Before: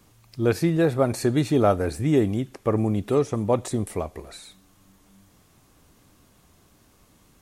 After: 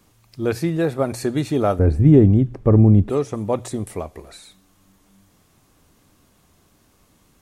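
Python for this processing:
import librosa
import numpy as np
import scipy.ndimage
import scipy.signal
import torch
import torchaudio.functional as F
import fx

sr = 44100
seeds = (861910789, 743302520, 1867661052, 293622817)

y = fx.tilt_eq(x, sr, slope=-4.5, at=(1.79, 3.1))
y = fx.hum_notches(y, sr, base_hz=60, count=2)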